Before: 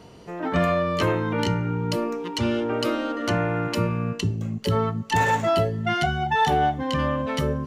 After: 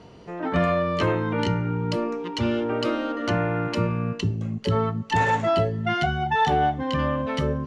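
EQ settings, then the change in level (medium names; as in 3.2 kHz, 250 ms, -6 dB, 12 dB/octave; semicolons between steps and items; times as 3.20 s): distance through air 81 m; 0.0 dB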